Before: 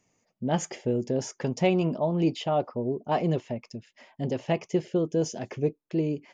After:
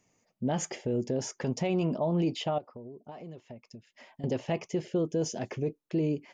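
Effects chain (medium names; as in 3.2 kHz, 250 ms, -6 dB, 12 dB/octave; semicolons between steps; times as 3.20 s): peak limiter -21 dBFS, peak gain reduction 9 dB; 2.58–4.24 s: compression 4:1, threshold -45 dBFS, peak gain reduction 16.5 dB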